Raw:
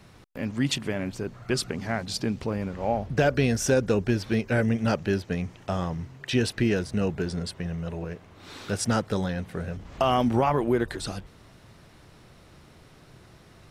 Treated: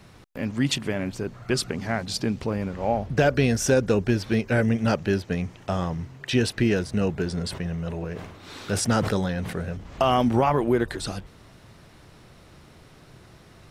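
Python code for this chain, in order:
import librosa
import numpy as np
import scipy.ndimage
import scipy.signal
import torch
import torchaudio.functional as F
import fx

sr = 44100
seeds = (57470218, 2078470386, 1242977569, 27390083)

y = fx.sustainer(x, sr, db_per_s=57.0, at=(7.32, 9.6))
y = F.gain(torch.from_numpy(y), 2.0).numpy()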